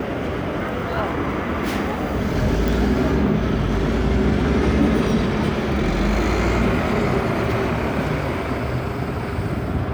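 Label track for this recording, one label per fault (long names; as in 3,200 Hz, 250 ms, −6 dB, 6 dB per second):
2.680000	2.680000	click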